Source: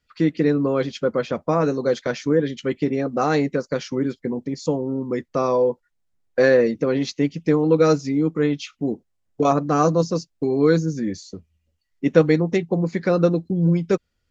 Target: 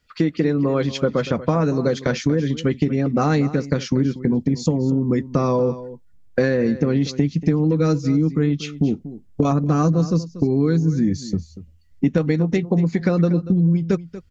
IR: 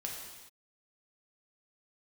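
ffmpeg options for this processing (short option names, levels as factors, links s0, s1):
-filter_complex "[0:a]asubboost=boost=4.5:cutoff=240,acompressor=threshold=0.0794:ratio=6,asplit=2[s0][s1];[s1]aecho=0:1:237:0.178[s2];[s0][s2]amix=inputs=2:normalize=0,volume=2.11"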